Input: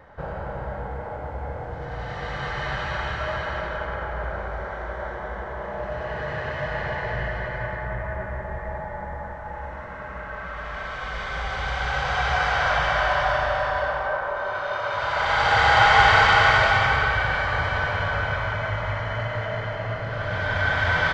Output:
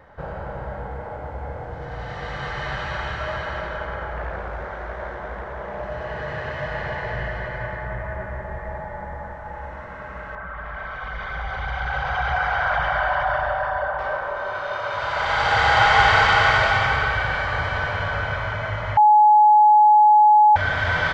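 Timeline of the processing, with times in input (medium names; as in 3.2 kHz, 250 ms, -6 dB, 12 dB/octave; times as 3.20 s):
4.17–5.83 s: loudspeaker Doppler distortion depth 0.44 ms
10.35–13.99 s: resonances exaggerated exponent 1.5
18.97–20.56 s: bleep 846 Hz -9.5 dBFS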